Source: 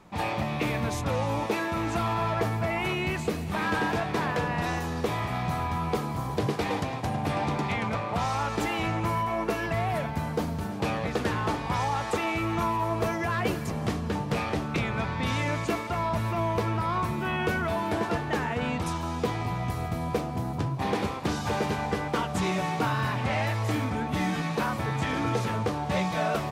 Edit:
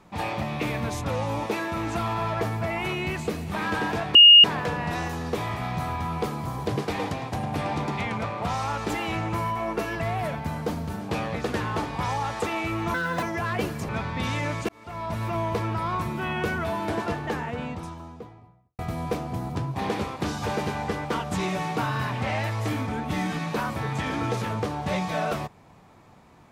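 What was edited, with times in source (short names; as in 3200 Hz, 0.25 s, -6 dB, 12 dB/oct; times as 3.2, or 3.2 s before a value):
4.15 add tone 2850 Hz -7.5 dBFS 0.29 s
12.65–13.09 speed 153%
13.75–14.92 cut
15.72–16.29 fade in
18.02–19.82 studio fade out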